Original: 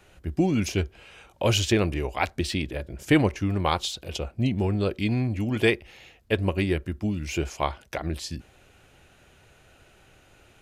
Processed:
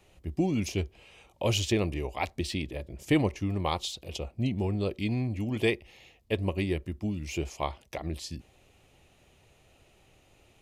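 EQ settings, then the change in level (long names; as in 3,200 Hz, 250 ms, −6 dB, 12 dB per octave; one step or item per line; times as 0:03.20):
parametric band 1,500 Hz −14 dB 0.3 octaves
−4.5 dB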